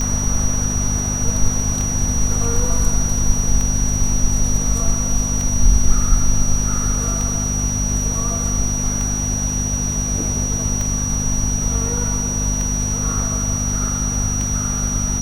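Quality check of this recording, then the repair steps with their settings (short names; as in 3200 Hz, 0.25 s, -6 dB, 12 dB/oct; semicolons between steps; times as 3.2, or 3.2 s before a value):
hum 50 Hz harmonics 5 -23 dBFS
tick 33 1/3 rpm -10 dBFS
tone 5800 Hz -22 dBFS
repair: de-click; de-hum 50 Hz, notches 5; notch 5800 Hz, Q 30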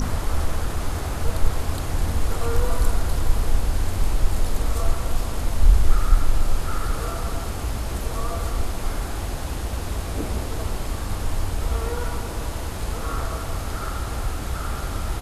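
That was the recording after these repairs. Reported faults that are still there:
none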